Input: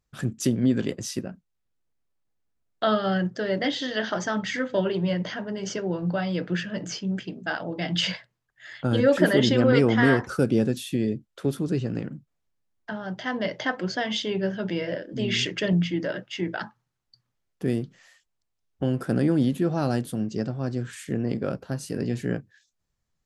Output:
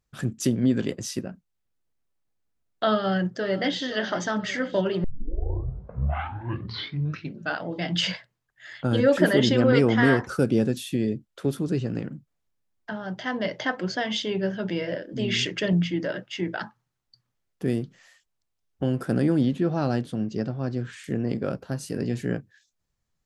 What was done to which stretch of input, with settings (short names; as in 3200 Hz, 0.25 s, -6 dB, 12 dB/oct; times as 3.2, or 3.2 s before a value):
2.92–3.81 echo throw 0.5 s, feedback 70%, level -16.5 dB
5.04 tape start 2.59 s
19.41–21.04 LPF 5300 Hz